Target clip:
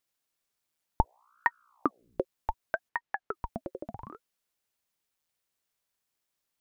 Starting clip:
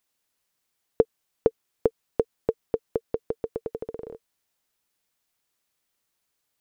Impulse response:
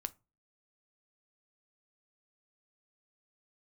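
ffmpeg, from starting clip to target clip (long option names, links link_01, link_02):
-filter_complex "[0:a]asettb=1/sr,asplit=3[link_01][link_02][link_03];[link_01]atrim=end=1.014[link_04];[link_02]atrim=start=1.01:end=2.2,asetpts=PTS-STARTPTS,afade=type=in:duration=0.004:curve=qsin,afade=type=out:start_time=1.186:duration=0.004:curve=qsin,aeval=exprs='val(0)+0.001*(sin(2*PI*60*n/s)+sin(2*PI*2*60*n/s)/2+sin(2*PI*3*60*n/s)/3+sin(2*PI*4*60*n/s)/4+sin(2*PI*5*60*n/s)/5)':channel_layout=same[link_05];[link_03]atrim=start=2.196[link_06];[link_04][link_05]acrossfade=duration=0.004:curve1=hsin:curve2=qsin[link_07];[link_07][link_06]acrossfade=duration=0.004:curve1=qsin:curve2=hsin,asplit=3[link_08][link_09][link_10];[link_08]afade=type=out:start_time=2.88:duration=0.02[link_11];[link_09]aemphasis=mode=reproduction:type=75kf,afade=type=in:start_time=2.88:duration=0.02,afade=type=out:start_time=3.33:duration=0.02[link_12];[link_10]afade=type=in:start_time=3.33:duration=0.02[link_13];[link_11][link_12][link_13]amix=inputs=3:normalize=0,aeval=exprs='val(0)*sin(2*PI*740*n/s+740*0.9/0.67*sin(2*PI*0.67*n/s))':channel_layout=same,volume=-2.5dB"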